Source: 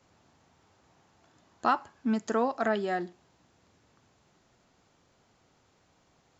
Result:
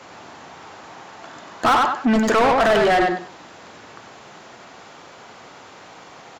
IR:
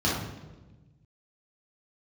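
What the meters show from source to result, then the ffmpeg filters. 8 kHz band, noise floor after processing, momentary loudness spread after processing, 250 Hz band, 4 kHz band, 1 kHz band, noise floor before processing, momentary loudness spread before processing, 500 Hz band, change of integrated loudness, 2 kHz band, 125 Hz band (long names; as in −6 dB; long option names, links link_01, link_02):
can't be measured, −44 dBFS, 7 LU, +10.5 dB, +18.5 dB, +13.0 dB, −68 dBFS, 5 LU, +12.5 dB, +12.5 dB, +15.0 dB, +12.0 dB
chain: -filter_complex "[0:a]aecho=1:1:96|192|288:0.422|0.0801|0.0152,asplit=2[link_01][link_02];[link_02]highpass=frequency=720:poles=1,volume=31dB,asoftclip=type=tanh:threshold=-12dB[link_03];[link_01][link_03]amix=inputs=2:normalize=0,lowpass=frequency=2400:poles=1,volume=-6dB,volume=3.5dB"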